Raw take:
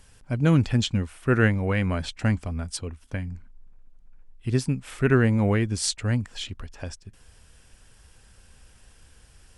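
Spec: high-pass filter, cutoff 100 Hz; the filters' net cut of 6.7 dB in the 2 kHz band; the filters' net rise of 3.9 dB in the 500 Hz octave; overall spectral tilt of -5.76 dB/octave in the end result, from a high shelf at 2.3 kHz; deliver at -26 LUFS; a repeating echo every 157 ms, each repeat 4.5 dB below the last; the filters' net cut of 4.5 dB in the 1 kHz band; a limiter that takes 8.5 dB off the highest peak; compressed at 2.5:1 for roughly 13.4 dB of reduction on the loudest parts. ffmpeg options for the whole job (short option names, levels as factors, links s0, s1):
-af "highpass=100,equalizer=f=500:t=o:g=6.5,equalizer=f=1000:t=o:g=-5.5,equalizer=f=2000:t=o:g=-3.5,highshelf=f=2300:g=-7.5,acompressor=threshold=0.0178:ratio=2.5,alimiter=level_in=1.5:limit=0.0631:level=0:latency=1,volume=0.668,aecho=1:1:157|314|471|628|785|942|1099|1256|1413:0.596|0.357|0.214|0.129|0.0772|0.0463|0.0278|0.0167|0.01,volume=3.98"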